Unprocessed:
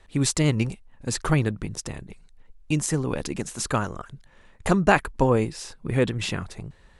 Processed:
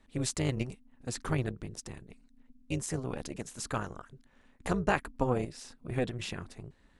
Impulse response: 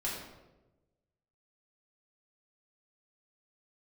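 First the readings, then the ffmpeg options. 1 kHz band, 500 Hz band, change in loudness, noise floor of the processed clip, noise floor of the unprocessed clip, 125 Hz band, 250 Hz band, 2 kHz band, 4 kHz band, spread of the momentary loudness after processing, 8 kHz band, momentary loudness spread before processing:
-9.5 dB, -9.5 dB, -9.5 dB, -64 dBFS, -54 dBFS, -10.0 dB, -10.0 dB, -10.0 dB, -9.5 dB, 14 LU, -10.0 dB, 15 LU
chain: -af "tremolo=f=250:d=0.75,volume=0.473"

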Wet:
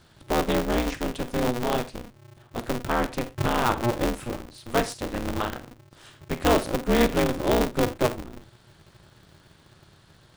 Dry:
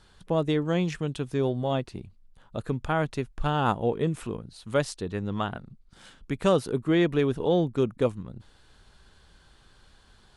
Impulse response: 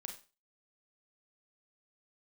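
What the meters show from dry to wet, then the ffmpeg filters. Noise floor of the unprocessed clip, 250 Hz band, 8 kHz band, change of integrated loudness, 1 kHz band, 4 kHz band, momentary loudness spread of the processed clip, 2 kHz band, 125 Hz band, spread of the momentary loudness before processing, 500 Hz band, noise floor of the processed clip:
-59 dBFS, +1.0 dB, +8.5 dB, +1.5 dB, +4.0 dB, +5.0 dB, 13 LU, +5.0 dB, -2.5 dB, 13 LU, +0.5 dB, -57 dBFS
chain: -filter_complex "[0:a]asplit=2[s0][s1];[1:a]atrim=start_sample=2205,atrim=end_sample=6174[s2];[s1][s2]afir=irnorm=-1:irlink=0,volume=1.41[s3];[s0][s3]amix=inputs=2:normalize=0,aeval=exprs='val(0)*sgn(sin(2*PI*120*n/s))':c=same,volume=0.631"

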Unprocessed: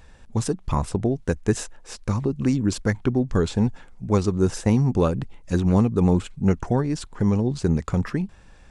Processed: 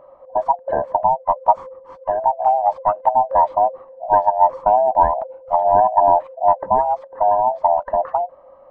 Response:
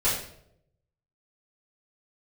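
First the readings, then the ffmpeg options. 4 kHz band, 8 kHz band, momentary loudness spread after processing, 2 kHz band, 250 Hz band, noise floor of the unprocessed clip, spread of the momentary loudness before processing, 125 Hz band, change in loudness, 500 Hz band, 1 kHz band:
under -20 dB, under -35 dB, 9 LU, no reading, -19.0 dB, -49 dBFS, 8 LU, under -20 dB, +5.5 dB, +7.5 dB, +20.5 dB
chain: -af "afftfilt=real='real(if(lt(b,1008),b+24*(1-2*mod(floor(b/24),2)),b),0)':imag='imag(if(lt(b,1008),b+24*(1-2*mod(floor(b/24),2)),b),0)':win_size=2048:overlap=0.75,lowpass=f=1000:t=q:w=3.4,volume=0.841"

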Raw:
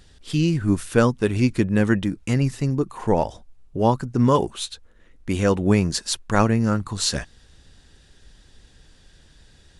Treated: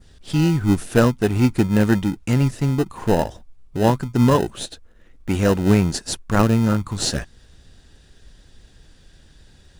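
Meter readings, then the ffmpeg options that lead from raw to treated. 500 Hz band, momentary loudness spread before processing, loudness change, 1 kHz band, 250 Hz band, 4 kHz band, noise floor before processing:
+1.0 dB, 10 LU, +2.0 dB, 0.0 dB, +2.5 dB, 0.0 dB, -53 dBFS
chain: -filter_complex "[0:a]adynamicequalizer=threshold=0.01:dfrequency=3400:dqfactor=0.8:tfrequency=3400:tqfactor=0.8:attack=5:release=100:ratio=0.375:range=2:mode=cutabove:tftype=bell,asplit=2[s0][s1];[s1]acrusher=samples=39:mix=1:aa=0.000001,volume=0.422[s2];[s0][s2]amix=inputs=2:normalize=0"

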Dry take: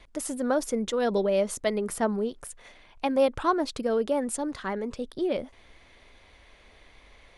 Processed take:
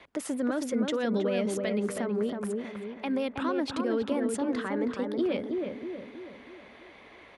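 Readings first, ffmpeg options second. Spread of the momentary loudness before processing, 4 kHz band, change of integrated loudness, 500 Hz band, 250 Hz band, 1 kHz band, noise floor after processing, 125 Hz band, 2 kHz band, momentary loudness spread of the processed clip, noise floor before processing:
9 LU, -1.5 dB, -2.5 dB, -3.5 dB, +1.5 dB, -6.5 dB, -52 dBFS, +1.0 dB, -0.5 dB, 17 LU, -56 dBFS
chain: -filter_complex "[0:a]highpass=120,bass=f=250:g=-4,treble=f=4000:g=-12,acrossover=split=340|1500[s0][s1][s2];[s1]acompressor=threshold=0.0112:ratio=6[s3];[s0][s3][s2]amix=inputs=3:normalize=0,alimiter=level_in=1.41:limit=0.0631:level=0:latency=1:release=82,volume=0.708,asplit=2[s4][s5];[s5]adelay=321,lowpass=f=1200:p=1,volume=0.708,asplit=2[s6][s7];[s7]adelay=321,lowpass=f=1200:p=1,volume=0.52,asplit=2[s8][s9];[s9]adelay=321,lowpass=f=1200:p=1,volume=0.52,asplit=2[s10][s11];[s11]adelay=321,lowpass=f=1200:p=1,volume=0.52,asplit=2[s12][s13];[s13]adelay=321,lowpass=f=1200:p=1,volume=0.52,asplit=2[s14][s15];[s15]adelay=321,lowpass=f=1200:p=1,volume=0.52,asplit=2[s16][s17];[s17]adelay=321,lowpass=f=1200:p=1,volume=0.52[s18];[s4][s6][s8][s10][s12][s14][s16][s18]amix=inputs=8:normalize=0,volume=1.78"

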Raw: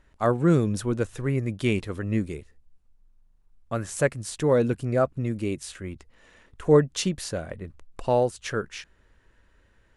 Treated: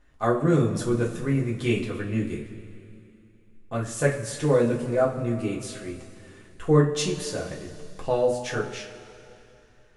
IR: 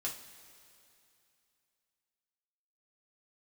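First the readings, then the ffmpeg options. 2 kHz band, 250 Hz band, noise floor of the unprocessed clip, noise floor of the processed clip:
+1.0 dB, +0.5 dB, -62 dBFS, -56 dBFS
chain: -filter_complex "[1:a]atrim=start_sample=2205[s0];[0:a][s0]afir=irnorm=-1:irlink=0"

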